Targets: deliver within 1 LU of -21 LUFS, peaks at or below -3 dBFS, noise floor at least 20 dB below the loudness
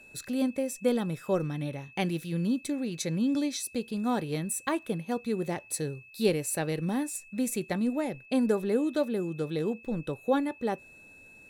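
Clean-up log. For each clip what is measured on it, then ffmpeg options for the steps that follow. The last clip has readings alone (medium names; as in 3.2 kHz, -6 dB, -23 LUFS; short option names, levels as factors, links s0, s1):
steady tone 2.6 kHz; tone level -51 dBFS; loudness -30.5 LUFS; peak level -13.0 dBFS; loudness target -21.0 LUFS
-> -af "bandreject=f=2600:w=30"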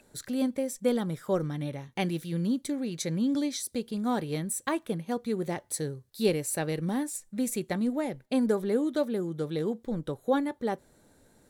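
steady tone not found; loudness -30.5 LUFS; peak level -13.5 dBFS; loudness target -21.0 LUFS
-> -af "volume=2.99"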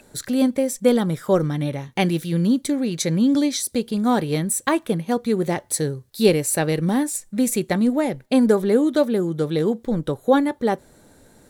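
loudness -21.0 LUFS; peak level -4.0 dBFS; noise floor -53 dBFS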